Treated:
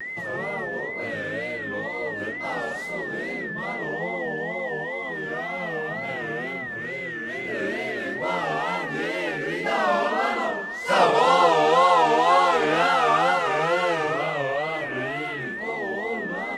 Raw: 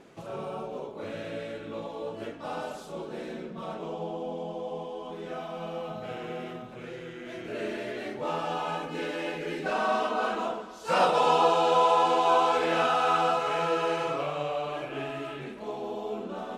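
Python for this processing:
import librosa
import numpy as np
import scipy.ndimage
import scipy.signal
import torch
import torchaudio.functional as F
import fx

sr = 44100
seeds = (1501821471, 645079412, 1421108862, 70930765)

y = x + 10.0 ** (-35.0 / 20.0) * np.sin(2.0 * np.pi * 1900.0 * np.arange(len(x)) / sr)
y = fx.wow_flutter(y, sr, seeds[0], rate_hz=2.1, depth_cents=140.0)
y = y * 10.0 ** (4.5 / 20.0)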